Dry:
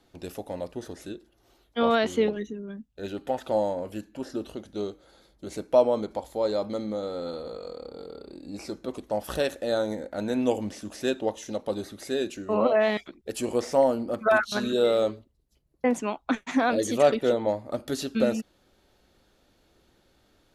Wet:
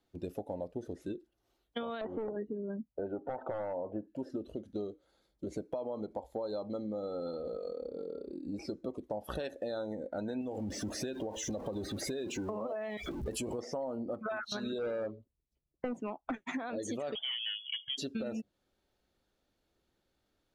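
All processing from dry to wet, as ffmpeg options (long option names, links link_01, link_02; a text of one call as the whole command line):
ffmpeg -i in.wav -filter_complex "[0:a]asettb=1/sr,asplit=3[link_01][link_02][link_03];[link_01]atrim=end=2.014[link_04];[link_02]atrim=start=2.01:end=4.08,asetpts=PTS-STARTPTS,afade=type=in:duration=0.004:curve=qsin,afade=type=out:start_time=2.066:duration=0.004:curve=qsin,lowpass=1300,equalizer=frequency=770:width=0.53:gain=10.5,aeval=exprs='clip(val(0),-1,0.15)':channel_layout=same[link_05];[link_03]atrim=start=4.076[link_06];[link_04][link_05]acrossfade=duration=0.004:curve1=hsin:curve2=qsin[link_07];[link_07][link_06]acrossfade=duration=0.004:curve1=qsin:curve2=hsin,asettb=1/sr,asplit=3[link_08][link_09][link_10];[link_08]atrim=end=10.414[link_11];[link_09]atrim=start=10.41:end=13.59,asetpts=PTS-STARTPTS,afade=type=in:duration=0.004:curve=qsin,afade=type=out:start_time=3.176:duration=0.004:curve=qsin,aeval=exprs='val(0)+0.5*0.02*sgn(val(0))':channel_layout=same,equalizer=frequency=64:width_type=o:width=1.1:gain=4.5,acompressor=threshold=-27dB:ratio=5:attack=3.2:release=140:knee=1:detection=peak[link_12];[link_10]atrim=start=13.586[link_13];[link_11][link_12]acrossfade=duration=0.004:curve1=hsin:curve2=qsin[link_14];[link_14][link_13]acrossfade=duration=0.004:curve1=qsin:curve2=hsin,asettb=1/sr,asplit=3[link_15][link_16][link_17];[link_15]atrim=end=14.784[link_18];[link_16]atrim=start=14.78:end=16.34,asetpts=PTS-STARTPTS,afade=type=in:duration=0.004:curve=qsin,afade=type=out:start_time=1.556:duration=0.004:curve=qsin,highshelf=frequency=2600:gain=-9.5,volume=21.5dB,asoftclip=hard,volume=-21.5dB[link_19];[link_17]atrim=start=16.336[link_20];[link_18][link_19]acrossfade=duration=0.004:curve1=hsin:curve2=qsin[link_21];[link_21][link_20]acrossfade=duration=0.004:curve1=qsin:curve2=hsin,asettb=1/sr,asplit=3[link_22][link_23][link_24];[link_22]atrim=end=17.154[link_25];[link_23]atrim=start=17.15:end=17.98,asetpts=PTS-STARTPTS,afade=type=in:duration=0.004:curve=qsin,afade=type=out:start_time=0.826:duration=0.004:curve=qsin,asoftclip=type=hard:threshold=-26.5dB,lowpass=frequency=3000:width_type=q:width=0.5098,lowpass=frequency=3000:width_type=q:width=0.6013,lowpass=frequency=3000:width_type=q:width=0.9,lowpass=frequency=3000:width_type=q:width=2.563,afreqshift=-3500[link_26];[link_24]atrim=start=17.976[link_27];[link_25][link_26]acrossfade=duration=0.004:curve1=hsin:curve2=qsin[link_28];[link_28][link_27]acrossfade=duration=0.004:curve1=qsin:curve2=hsin,afftdn=noise_reduction=17:noise_floor=-39,alimiter=limit=-19.5dB:level=0:latency=1:release=82,acompressor=threshold=-37dB:ratio=6,volume=2dB" out.wav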